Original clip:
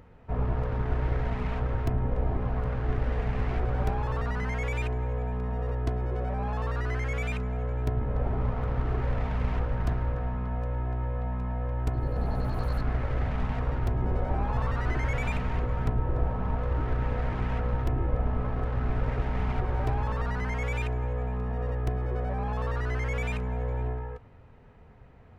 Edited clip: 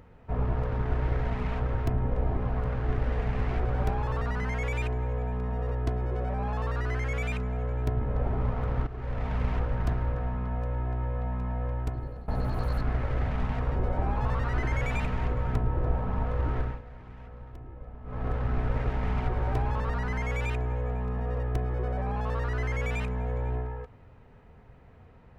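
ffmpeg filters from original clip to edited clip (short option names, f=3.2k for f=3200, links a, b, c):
-filter_complex "[0:a]asplit=6[a][b][c][d][e][f];[a]atrim=end=8.87,asetpts=PTS-STARTPTS,afade=t=out:st=8.866:d=0.004:c=hsin:silence=0.188365[g];[b]atrim=start=8.87:end=12.28,asetpts=PTS-STARTPTS,afade=t=in:d=0.47:silence=0.188365,afade=t=out:st=2.82:d=0.59:silence=0.112202[h];[c]atrim=start=12.28:end=13.762,asetpts=PTS-STARTPTS,afade=t=in:d=0.004:c=hsin:silence=0.112202[i];[d]atrim=start=14.078:end=17.13,asetpts=PTS-STARTPTS,afade=t=out:st=2.822:d=0.23:silence=0.149624[j];[e]atrim=start=17.13:end=18.36,asetpts=PTS-STARTPTS,volume=-16.5dB[k];[f]atrim=start=18.36,asetpts=PTS-STARTPTS,afade=t=in:d=0.23:silence=0.149624[l];[g][h][i]concat=n=3:v=0:a=1[m];[j][k][l]concat=n=3:v=0:a=1[n];[m][n]acrossfade=d=0.004:c1=hsin:c2=hsin"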